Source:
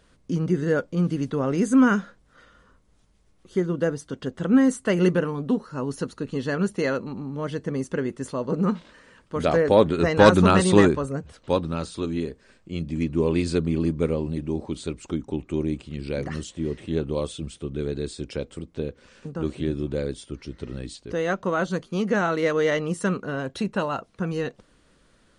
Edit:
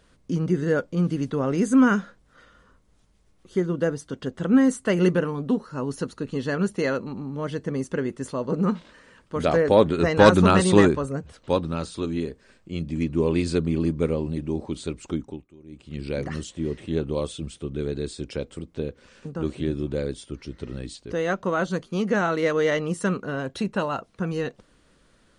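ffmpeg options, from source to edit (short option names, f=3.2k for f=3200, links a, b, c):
-filter_complex "[0:a]asplit=3[a][b][c];[a]atrim=end=15.57,asetpts=PTS-STARTPTS,afade=t=out:st=15.2:d=0.37:c=qua:silence=0.0630957[d];[b]atrim=start=15.57:end=15.59,asetpts=PTS-STARTPTS,volume=-24dB[e];[c]atrim=start=15.59,asetpts=PTS-STARTPTS,afade=t=in:d=0.37:c=qua:silence=0.0630957[f];[d][e][f]concat=n=3:v=0:a=1"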